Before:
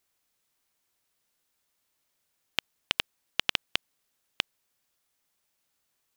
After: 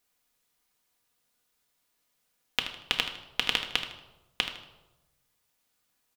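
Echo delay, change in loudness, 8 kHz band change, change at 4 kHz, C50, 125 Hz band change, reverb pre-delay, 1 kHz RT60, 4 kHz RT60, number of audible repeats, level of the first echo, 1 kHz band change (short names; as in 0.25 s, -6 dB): 78 ms, +1.5 dB, +1.0 dB, +2.0 dB, 7.5 dB, +1.0 dB, 4 ms, 0.95 s, 0.70 s, 1, -11.0 dB, +2.5 dB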